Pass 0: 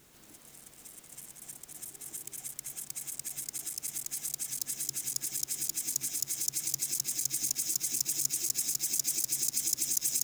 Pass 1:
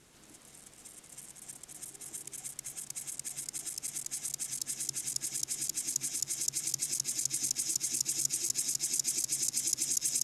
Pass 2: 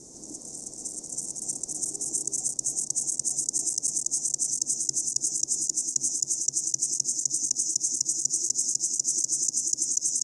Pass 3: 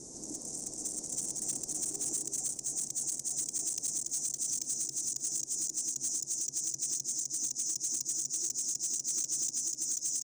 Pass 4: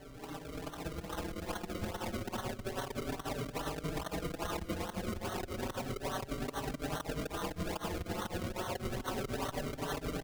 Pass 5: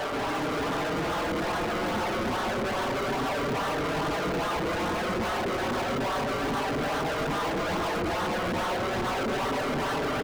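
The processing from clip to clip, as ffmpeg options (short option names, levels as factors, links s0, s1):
-af "lowpass=f=11000:w=0.5412,lowpass=f=11000:w=1.3066"
-af "firequalizer=gain_entry='entry(110,0);entry(290,9);entry(420,6);entry(780,1);entry(1400,-19);entry(3000,-23);entry(5900,14);entry(9000,6);entry(13000,-17)':delay=0.05:min_phase=1,areverse,acompressor=threshold=0.0316:ratio=10,areverse,volume=2.37"
-af "alimiter=limit=0.141:level=0:latency=1:release=312,asoftclip=type=tanh:threshold=0.0422,aecho=1:1:503:0.168"
-filter_complex "[0:a]acrusher=samples=35:mix=1:aa=0.000001:lfo=1:lforange=35:lforate=2.4,asplit=2[s0][s1];[s1]adelay=4.7,afreqshift=0.31[s2];[s0][s2]amix=inputs=2:normalize=1"
-filter_complex "[0:a]aeval=exprs='val(0)+0.5*0.01*sgn(val(0))':c=same,acrossover=split=460[s0][s1];[s0]adelay=120[s2];[s2][s1]amix=inputs=2:normalize=0,asplit=2[s3][s4];[s4]highpass=f=720:p=1,volume=70.8,asoftclip=type=tanh:threshold=0.0944[s5];[s3][s5]amix=inputs=2:normalize=0,lowpass=f=1700:p=1,volume=0.501"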